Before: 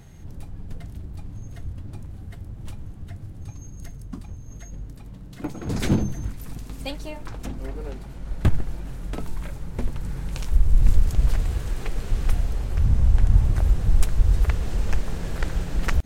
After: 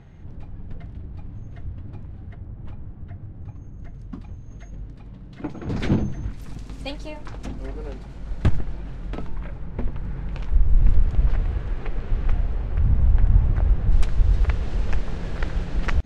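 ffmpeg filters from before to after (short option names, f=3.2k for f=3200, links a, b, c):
-af "asetnsamples=n=441:p=0,asendcmd='2.33 lowpass f 1800;3.94 lowpass f 3500;6.33 lowpass f 6300;8.58 lowpass f 3800;9.27 lowpass f 2400;13.92 lowpass f 4400',lowpass=2.7k"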